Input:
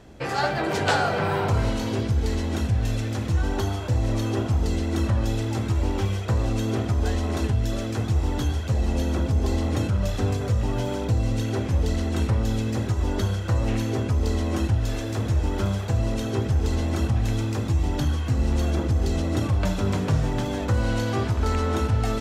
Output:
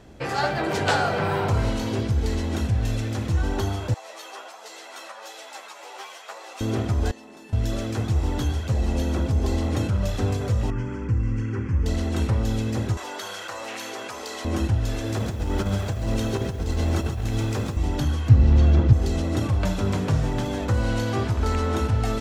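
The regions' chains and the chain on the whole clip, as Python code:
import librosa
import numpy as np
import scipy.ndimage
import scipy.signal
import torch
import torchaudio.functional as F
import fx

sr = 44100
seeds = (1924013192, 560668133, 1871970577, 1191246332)

y = fx.chain(x, sr, fx.highpass(hz=640.0, slope=24),
    fx.echo_single(ms=569, db=-11.0),
    fx.ensemble(), at=(3.94, 6.61))
y = fx.chain(y, sr, fx.highpass(hz=180.0, slope=24),
    fx.comb_fb(f0_hz=880.0, decay_s=0.32, harmonics='all', damping=0.0, mix_pct=90),
    fx.env_flatten(amount_pct=100), at=(7.11, 7.53))
y = fx.chain(y, sr, fx.air_absorb(metres=120.0),
    fx.fixed_phaser(hz=1600.0, stages=4), at=(10.7, 11.86))
y = fx.chain(y, sr, fx.highpass(hz=770.0, slope=12),
    fx.env_flatten(amount_pct=70), at=(12.97, 14.45))
y = fx.chain(y, sr, fx.over_compress(threshold_db=-24.0, ratio=-0.5),
    fx.echo_crushed(ms=135, feedback_pct=35, bits=8, wet_db=-8.5), at=(15.04, 17.77))
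y = fx.chain(y, sr, fx.lowpass(hz=4700.0, slope=12),
    fx.peak_eq(hz=100.0, db=12.0, octaves=1.3), at=(18.29, 18.93))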